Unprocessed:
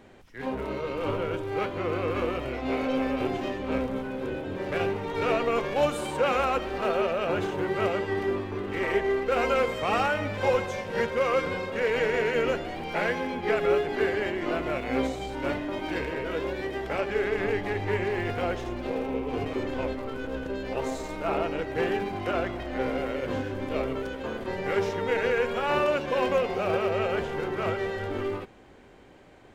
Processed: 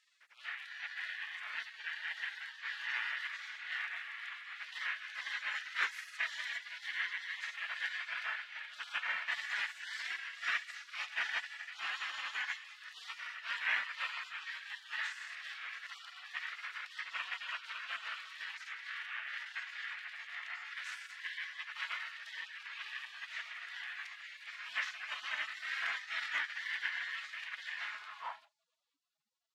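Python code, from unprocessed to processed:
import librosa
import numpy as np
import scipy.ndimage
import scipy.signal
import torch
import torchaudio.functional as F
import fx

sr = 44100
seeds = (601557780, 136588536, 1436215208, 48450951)

y = fx.octave_divider(x, sr, octaves=2, level_db=-3.0)
y = fx.spec_gate(y, sr, threshold_db=-30, keep='weak')
y = fx.filter_sweep_bandpass(y, sr, from_hz=1800.0, to_hz=340.0, start_s=27.87, end_s=28.97, q=3.3)
y = F.gain(torch.from_numpy(y), 16.5).numpy()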